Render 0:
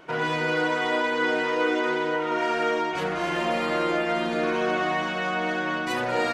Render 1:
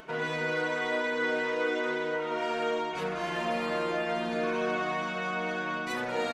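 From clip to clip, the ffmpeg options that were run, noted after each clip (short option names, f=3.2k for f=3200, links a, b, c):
-af "acompressor=mode=upward:threshold=-39dB:ratio=2.5,aecho=1:1:4.6:0.41,volume=-6dB"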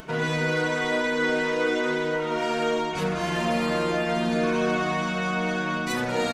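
-af "bass=f=250:g=10,treble=f=4k:g=7,volume=4dB"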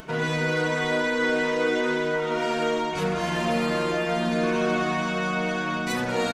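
-af "aecho=1:1:506:0.224"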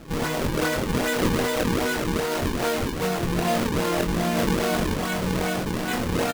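-filter_complex "[0:a]acrusher=samples=38:mix=1:aa=0.000001:lfo=1:lforange=60.8:lforate=2.5,asplit=2[a][b];[b]adelay=23,volume=-5dB[c];[a][c]amix=inputs=2:normalize=0"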